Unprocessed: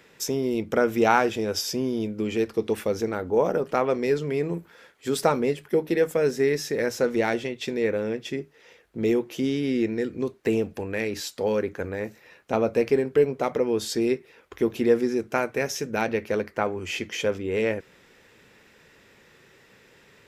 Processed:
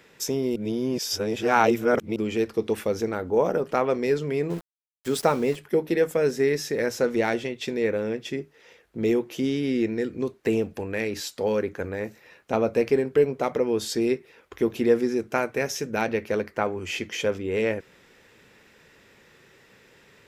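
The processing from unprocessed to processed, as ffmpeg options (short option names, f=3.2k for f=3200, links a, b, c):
-filter_complex "[0:a]asettb=1/sr,asplit=3[a][b][c];[a]atrim=end=4.504[d];[b]atrim=start=4.5:end=5.56,asetpts=PTS-STARTPTS,afade=t=in:d=0.004:c=qsin,afade=t=out:st=1.056:d=0.004:c=qsin,aeval=exprs='val(0)*gte(abs(val(0)),0.0133)':c=same[e];[c]atrim=start=5.556[f];[d][e]acrossfade=d=0.004:c1=hsin:c2=qsin[g];[g][f]acrossfade=d=0.004:c1=qsin:c2=hsin,asplit=3[h][i][j];[h]atrim=end=0.562[k];[i]atrim=start=0.558:end=2.162,asetpts=PTS-STARTPTS,areverse[l];[j]atrim=start=2.158[m];[k][l]acrossfade=d=0.004:c1=hsin:c2=hsin[n];[n][m]acrossfade=d=0.004:c1=hsin:c2=hsin"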